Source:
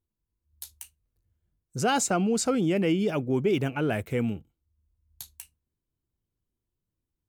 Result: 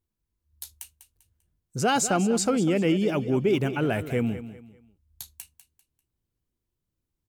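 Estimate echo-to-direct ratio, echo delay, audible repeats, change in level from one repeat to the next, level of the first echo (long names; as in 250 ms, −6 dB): −12.5 dB, 197 ms, 3, −9.5 dB, −13.0 dB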